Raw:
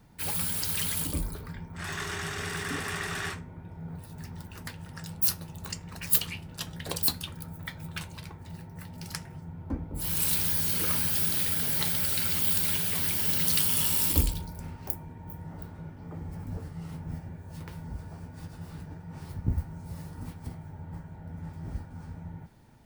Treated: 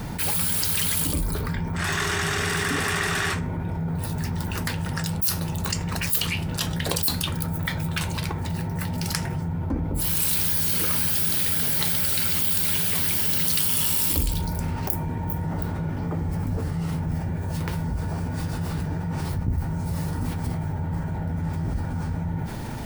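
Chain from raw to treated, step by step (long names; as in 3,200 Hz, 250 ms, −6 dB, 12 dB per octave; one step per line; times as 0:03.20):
envelope flattener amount 70%
level −2 dB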